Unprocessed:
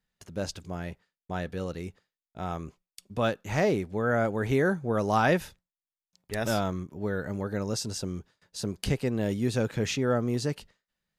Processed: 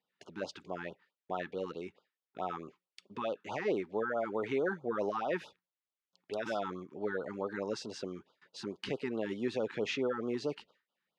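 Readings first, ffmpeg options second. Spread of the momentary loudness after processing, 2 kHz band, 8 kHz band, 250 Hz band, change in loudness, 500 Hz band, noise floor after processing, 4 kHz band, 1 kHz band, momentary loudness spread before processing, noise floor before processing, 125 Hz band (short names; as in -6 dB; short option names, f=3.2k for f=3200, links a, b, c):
12 LU, -7.5 dB, under -15 dB, -9.0 dB, -7.5 dB, -5.5 dB, under -85 dBFS, -7.5 dB, -7.0 dB, 13 LU, under -85 dBFS, -18.5 dB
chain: -filter_complex "[0:a]asplit=2[a][b];[b]acompressor=threshold=-41dB:ratio=6,volume=-2.5dB[c];[a][c]amix=inputs=2:normalize=0,highpass=370,lowpass=2.8k,alimiter=limit=-22dB:level=0:latency=1:release=15,afftfilt=real='re*(1-between(b*sr/1024,540*pow(2100/540,0.5+0.5*sin(2*PI*4.6*pts/sr))/1.41,540*pow(2100/540,0.5+0.5*sin(2*PI*4.6*pts/sr))*1.41))':imag='im*(1-between(b*sr/1024,540*pow(2100/540,0.5+0.5*sin(2*PI*4.6*pts/sr))/1.41,540*pow(2100/540,0.5+0.5*sin(2*PI*4.6*pts/sr))*1.41))':win_size=1024:overlap=0.75,volume=-1dB"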